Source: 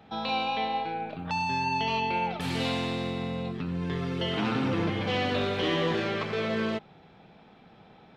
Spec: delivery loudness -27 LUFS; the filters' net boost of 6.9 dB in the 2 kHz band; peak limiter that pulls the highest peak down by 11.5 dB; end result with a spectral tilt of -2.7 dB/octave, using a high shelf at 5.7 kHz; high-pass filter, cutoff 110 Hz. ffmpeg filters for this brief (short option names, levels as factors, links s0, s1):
-af "highpass=110,equalizer=f=2000:t=o:g=8,highshelf=f=5700:g=6.5,volume=1.88,alimiter=limit=0.112:level=0:latency=1"